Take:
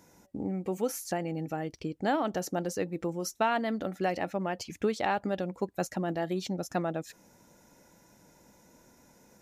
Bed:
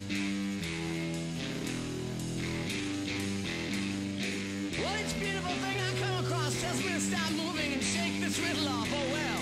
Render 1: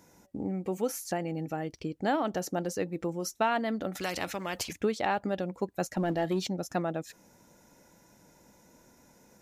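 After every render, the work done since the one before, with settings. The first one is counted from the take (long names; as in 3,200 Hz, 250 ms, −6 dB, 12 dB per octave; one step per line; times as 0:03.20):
0:03.95–0:04.73: every bin compressed towards the loudest bin 2 to 1
0:05.97–0:06.47: leveller curve on the samples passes 1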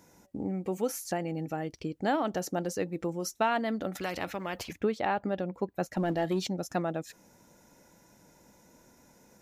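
0:03.97–0:05.93: parametric band 8,000 Hz −9.5 dB 1.9 octaves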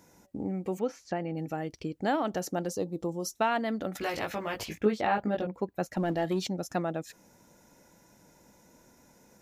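0:00.79–0:01.37: high-frequency loss of the air 180 metres
0:02.70–0:03.33: flat-topped bell 1,900 Hz −15.5 dB 1.1 octaves
0:03.99–0:05.47: double-tracking delay 19 ms −2 dB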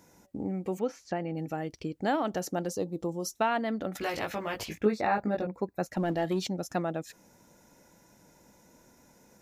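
0:03.42–0:03.92: high-shelf EQ 5,000 Hz −5.5 dB
0:04.87–0:05.86: Butterworth band-reject 3,100 Hz, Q 3.6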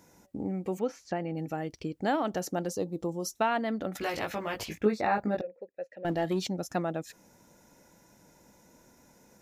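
0:05.41–0:06.05: formant filter e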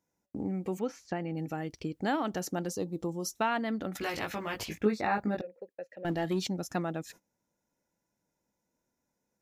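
noise gate −50 dBFS, range −23 dB
dynamic equaliser 590 Hz, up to −5 dB, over −42 dBFS, Q 1.6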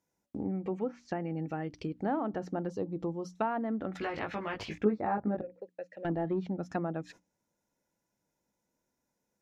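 treble cut that deepens with the level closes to 1,000 Hz, closed at −28 dBFS
mains-hum notches 60/120/180/240/300 Hz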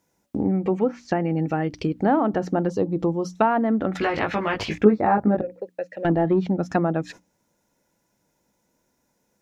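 level +12 dB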